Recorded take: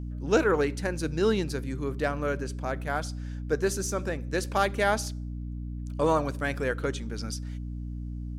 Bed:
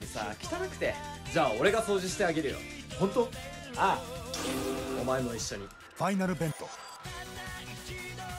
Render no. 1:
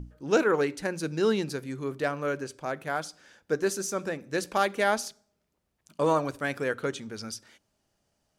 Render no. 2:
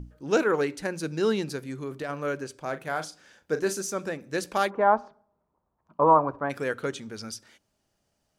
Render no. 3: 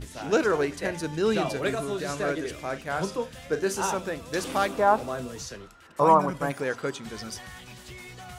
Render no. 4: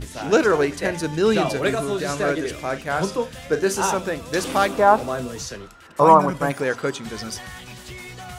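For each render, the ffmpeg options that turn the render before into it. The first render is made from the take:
ffmpeg -i in.wav -af "bandreject=frequency=60:width_type=h:width=6,bandreject=frequency=120:width_type=h:width=6,bandreject=frequency=180:width_type=h:width=6,bandreject=frequency=240:width_type=h:width=6,bandreject=frequency=300:width_type=h:width=6" out.wav
ffmpeg -i in.wav -filter_complex "[0:a]asplit=3[link_01][link_02][link_03];[link_01]afade=type=out:start_time=1.67:duration=0.02[link_04];[link_02]acompressor=threshold=-29dB:ratio=6:attack=3.2:release=140:knee=1:detection=peak,afade=type=in:start_time=1.67:duration=0.02,afade=type=out:start_time=2.08:duration=0.02[link_05];[link_03]afade=type=in:start_time=2.08:duration=0.02[link_06];[link_04][link_05][link_06]amix=inputs=3:normalize=0,asettb=1/sr,asplit=3[link_07][link_08][link_09];[link_07]atrim=end=2.614[link_10];[link_08]atrim=start=2.61:end=3.82,asetpts=PTS-STARTPTS,afade=type=in:duration=0.004:curve=qsin,afade=type=out:start_time=1.206:duration=0.004:curve=qsin,asplit=2[link_11][link_12];[link_12]adelay=37,volume=-10.5dB[link_13];[link_11][link_13]amix=inputs=2:normalize=0,atrim=end_sample=53361[link_14];[link_09]atrim=start=3.816[link_15];[link_10][link_14]acrossfade=duration=0.004:curve1=hsin:curve2=qsin[link_16];[link_16][link_15]acrossfade=duration=0.004:curve1=qsin:curve2=hsin,asplit=3[link_17][link_18][link_19];[link_17]afade=type=out:start_time=4.69:duration=0.02[link_20];[link_18]lowpass=frequency=1000:width_type=q:width=3.5,afade=type=in:start_time=4.69:duration=0.02,afade=type=out:start_time=6.49:duration=0.02[link_21];[link_19]afade=type=in:start_time=6.49:duration=0.02[link_22];[link_20][link_21][link_22]amix=inputs=3:normalize=0" out.wav
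ffmpeg -i in.wav -i bed.wav -filter_complex "[1:a]volume=-2.5dB[link_01];[0:a][link_01]amix=inputs=2:normalize=0" out.wav
ffmpeg -i in.wav -af "volume=6dB" out.wav

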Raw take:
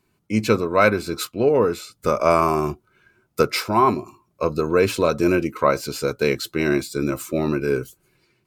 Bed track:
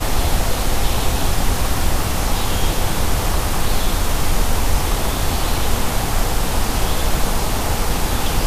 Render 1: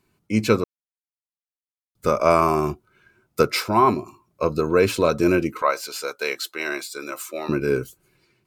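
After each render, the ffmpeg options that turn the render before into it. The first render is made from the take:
ffmpeg -i in.wav -filter_complex "[0:a]asettb=1/sr,asplit=3[link_01][link_02][link_03];[link_01]atrim=end=5.624[link_04];[link_02]atrim=start=5.62:end=7.49,asetpts=PTS-STARTPTS,afade=type=in:duration=0.004:curve=qsin,afade=type=out:start_time=1.866:duration=0.004:curve=qsin,highpass=680[link_05];[link_03]atrim=start=7.486[link_06];[link_04][link_05]acrossfade=duration=0.004:curve1=hsin:curve2=qsin[link_07];[link_07][link_06]acrossfade=duration=0.004:curve1=qsin:curve2=hsin,asplit=3[link_08][link_09][link_10];[link_08]atrim=end=0.64,asetpts=PTS-STARTPTS,afade=type=out:start_time=0.636:duration=0.004:curve=hsin[link_11];[link_09]atrim=start=0.64:end=1.95,asetpts=PTS-STARTPTS,volume=0[link_12];[link_10]atrim=start=1.95,asetpts=PTS-STARTPTS,afade=type=in:duration=0.004:curve=hsin[link_13];[link_11][link_12][link_13]concat=n=3:v=0:a=1" out.wav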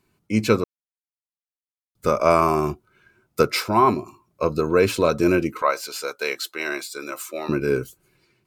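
ffmpeg -i in.wav -af anull out.wav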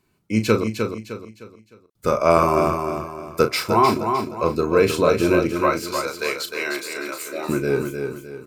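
ffmpeg -i in.wav -filter_complex "[0:a]asplit=2[link_01][link_02];[link_02]adelay=36,volume=-9.5dB[link_03];[link_01][link_03]amix=inputs=2:normalize=0,aecho=1:1:306|612|918|1224:0.501|0.185|0.0686|0.0254" out.wav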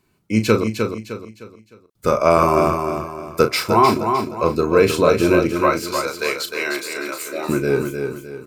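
ffmpeg -i in.wav -af "volume=2.5dB,alimiter=limit=-1dB:level=0:latency=1" out.wav

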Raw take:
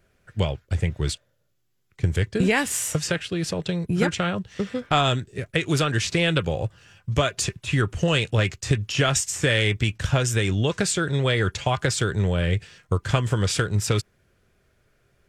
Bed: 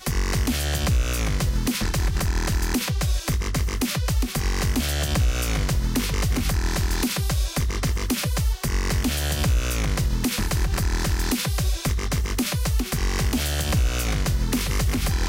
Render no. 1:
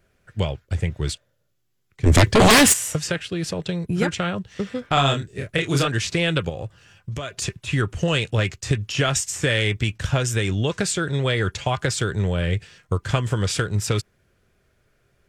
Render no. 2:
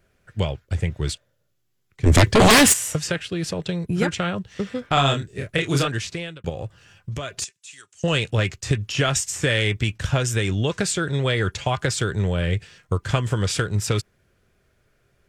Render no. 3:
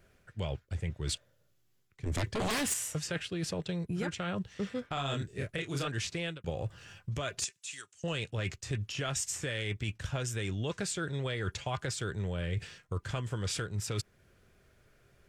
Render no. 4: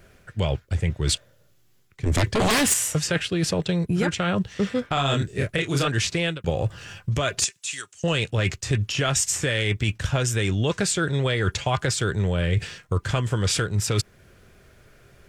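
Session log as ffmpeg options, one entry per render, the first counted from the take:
ffmpeg -i in.wav -filter_complex "[0:a]asplit=3[link_01][link_02][link_03];[link_01]afade=type=out:start_time=2.05:duration=0.02[link_04];[link_02]aeval=exprs='0.355*sin(PI/2*4.47*val(0)/0.355)':channel_layout=same,afade=type=in:start_time=2.05:duration=0.02,afade=type=out:start_time=2.72:duration=0.02[link_05];[link_03]afade=type=in:start_time=2.72:duration=0.02[link_06];[link_04][link_05][link_06]amix=inputs=3:normalize=0,asettb=1/sr,asplit=3[link_07][link_08][link_09];[link_07]atrim=end=4.944[link_10];[link_08]atrim=start=4.94:end=5.88,asetpts=PTS-STARTPTS,afade=type=in:duration=0.004:curve=qsin,afade=type=out:start_time=0.936:duration=0.004:curve=qsin,asplit=2[link_11][link_12];[link_12]adelay=29,volume=-3.5dB[link_13];[link_11][link_13]amix=inputs=2:normalize=0,atrim=end_sample=41454[link_14];[link_09]atrim=start=5.876[link_15];[link_10][link_14]acrossfade=duration=0.004:curve1=hsin:curve2=qsin[link_16];[link_16][link_15]acrossfade=duration=0.004:curve1=qsin:curve2=hsin,asettb=1/sr,asplit=3[link_17][link_18][link_19];[link_17]atrim=end=6.494[link_20];[link_18]atrim=start=6.49:end=7.42,asetpts=PTS-STARTPTS,afade=type=in:duration=0.004:curve=qsin,afade=type=out:start_time=0.926:duration=0.004:curve=qsin,acompressor=threshold=-26dB:ratio=6:attack=3.2:release=140:knee=1:detection=peak[link_21];[link_19]atrim=start=7.416[link_22];[link_20][link_21]acrossfade=duration=0.004:curve1=hsin:curve2=qsin[link_23];[link_23][link_22]acrossfade=duration=0.004:curve1=qsin:curve2=hsin" out.wav
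ffmpeg -i in.wav -filter_complex "[0:a]asettb=1/sr,asplit=3[link_01][link_02][link_03];[link_01]atrim=end=7.444[link_04];[link_02]atrim=start=7.44:end=8.04,asetpts=PTS-STARTPTS,afade=type=in:duration=0.004:curve=qsin,afade=type=out:start_time=0.596:duration=0.004:curve=qsin,bandpass=frequency=7300:width_type=q:width=2[link_05];[link_03]atrim=start=8.036[link_06];[link_04][link_05]acrossfade=duration=0.004:curve1=hsin:curve2=qsin[link_07];[link_07][link_06]acrossfade=duration=0.004:curve1=qsin:curve2=hsin,asplit=2[link_08][link_09];[link_08]atrim=end=6.44,asetpts=PTS-STARTPTS,afade=type=out:start_time=5.76:duration=0.68[link_10];[link_09]atrim=start=6.44,asetpts=PTS-STARTPTS,afade=type=in:duration=0.004:curve=hsin[link_11];[link_10][link_11]concat=n=2:v=0:a=1" out.wav
ffmpeg -i in.wav -af "alimiter=limit=-13.5dB:level=0:latency=1:release=373,areverse,acompressor=threshold=-32dB:ratio=6,areverse" out.wav
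ffmpeg -i in.wav -af "volume=11.5dB" out.wav

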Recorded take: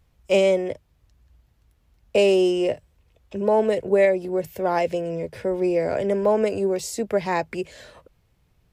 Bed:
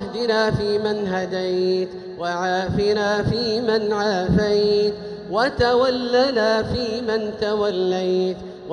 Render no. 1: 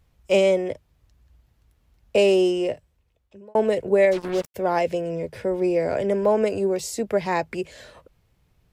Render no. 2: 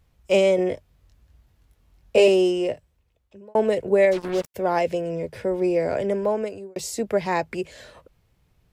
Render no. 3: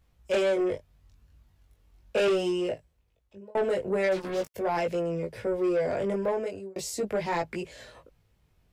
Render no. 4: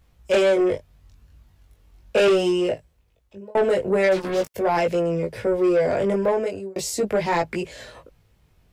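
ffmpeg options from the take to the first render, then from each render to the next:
ffmpeg -i in.wav -filter_complex "[0:a]asplit=3[link_01][link_02][link_03];[link_01]afade=type=out:start_time=4.11:duration=0.02[link_04];[link_02]acrusher=bits=4:mix=0:aa=0.5,afade=type=in:start_time=4.11:duration=0.02,afade=type=out:start_time=4.54:duration=0.02[link_05];[link_03]afade=type=in:start_time=4.54:duration=0.02[link_06];[link_04][link_05][link_06]amix=inputs=3:normalize=0,asplit=2[link_07][link_08];[link_07]atrim=end=3.55,asetpts=PTS-STARTPTS,afade=type=out:start_time=2.4:duration=1.15[link_09];[link_08]atrim=start=3.55,asetpts=PTS-STARTPTS,afade=type=in:duration=0.004:curve=hsin[link_10];[link_09][link_10]concat=n=2:v=0:a=1" out.wav
ffmpeg -i in.wav -filter_complex "[0:a]asettb=1/sr,asplit=3[link_01][link_02][link_03];[link_01]atrim=end=0.564[link_04];[link_02]atrim=start=0.56:end=2.28,asetpts=PTS-STARTPTS,afade=type=in:duration=0.004:curve=qsin,afade=type=out:start_time=1.716:duration=0.004:curve=qsin,asplit=2[link_05][link_06];[link_06]adelay=22,volume=-2.5dB[link_07];[link_05][link_07]amix=inputs=2:normalize=0,atrim=end_sample=75852[link_08];[link_03]atrim=start=2.276[link_09];[link_04][link_08]acrossfade=duration=0.004:curve1=hsin:curve2=qsin[link_10];[link_10][link_09]acrossfade=duration=0.004:curve1=qsin:curve2=hsin,asplit=2[link_11][link_12];[link_11]atrim=end=6.76,asetpts=PTS-STARTPTS,afade=type=out:start_time=5.75:duration=1.01:curve=qsin[link_13];[link_12]atrim=start=6.76,asetpts=PTS-STARTPTS,afade=type=in:duration=0.004:curve=hsin[link_14];[link_13][link_14]concat=n=2:v=0:a=1" out.wav
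ffmpeg -i in.wav -af "flanger=delay=17.5:depth=3.8:speed=0.39,asoftclip=type=tanh:threshold=-20.5dB" out.wav
ffmpeg -i in.wav -af "volume=7dB" out.wav

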